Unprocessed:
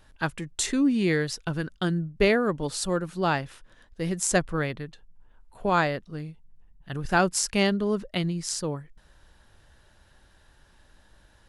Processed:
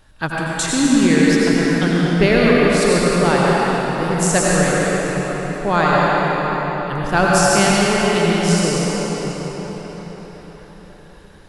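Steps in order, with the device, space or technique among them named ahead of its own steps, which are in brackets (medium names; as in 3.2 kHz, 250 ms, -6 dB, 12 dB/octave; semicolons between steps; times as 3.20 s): cathedral (reverberation RT60 5.4 s, pre-delay 78 ms, DRR -6 dB); trim +4.5 dB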